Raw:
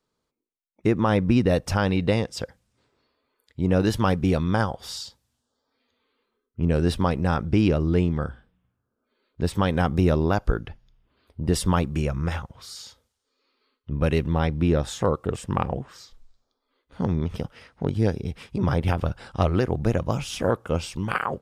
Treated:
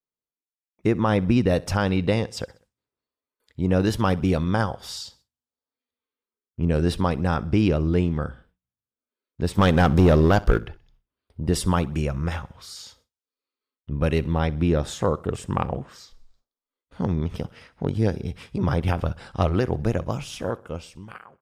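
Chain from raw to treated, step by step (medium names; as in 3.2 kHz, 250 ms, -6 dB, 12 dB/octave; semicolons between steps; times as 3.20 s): fade out at the end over 1.67 s; 9.58–10.59 s: waveshaping leveller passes 2; on a send: feedback delay 64 ms, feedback 49%, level -22 dB; on the sum: gate with hold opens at -49 dBFS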